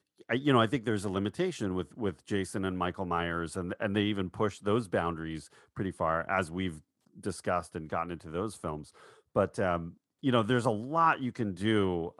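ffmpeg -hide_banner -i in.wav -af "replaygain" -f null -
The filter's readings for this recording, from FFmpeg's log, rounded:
track_gain = +11.2 dB
track_peak = 0.211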